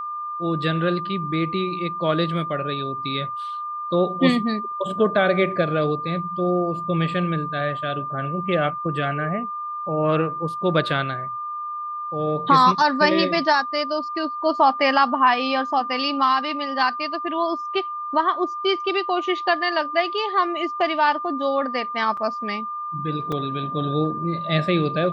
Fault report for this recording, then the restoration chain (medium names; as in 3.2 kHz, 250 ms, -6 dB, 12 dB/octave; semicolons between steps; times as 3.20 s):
whine 1.2 kHz -27 dBFS
22.17 s: dropout 4.1 ms
23.32 s: dropout 4.3 ms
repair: band-stop 1.2 kHz, Q 30; interpolate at 22.17 s, 4.1 ms; interpolate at 23.32 s, 4.3 ms